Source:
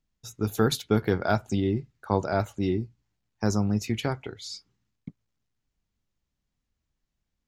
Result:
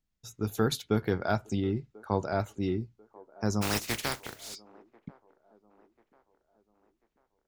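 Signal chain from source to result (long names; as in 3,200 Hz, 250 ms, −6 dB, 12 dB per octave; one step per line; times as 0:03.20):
0:03.61–0:04.54: compressing power law on the bin magnitudes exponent 0.28
delay with a band-pass on its return 1,041 ms, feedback 43%, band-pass 580 Hz, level −21.5 dB
level −4 dB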